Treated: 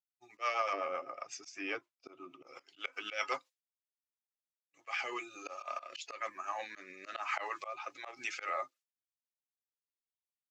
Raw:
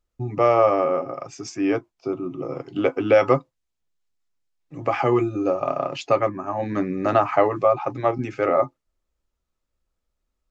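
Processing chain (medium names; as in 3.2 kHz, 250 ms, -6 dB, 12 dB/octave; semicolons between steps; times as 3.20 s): coarse spectral quantiser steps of 15 dB; Bessel high-pass 3 kHz, order 2; expander -56 dBFS; 0.73–2.47 s: tilt EQ -3.5 dB/octave; slow attack 145 ms; in parallel at +3 dB: peak limiter -33 dBFS, peak gain reduction 11 dB; on the sum: rotary cabinet horn 8 Hz, later 1.1 Hz, at 4.08 s; trim +1 dB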